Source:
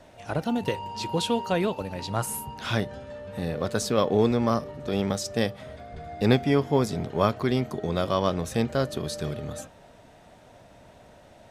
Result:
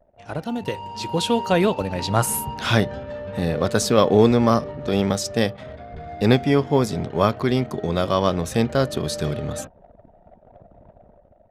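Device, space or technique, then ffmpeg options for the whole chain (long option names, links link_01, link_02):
voice memo with heavy noise removal: -af "anlmdn=0.0251,dynaudnorm=framelen=540:gausssize=5:maxgain=14dB,volume=-1dB"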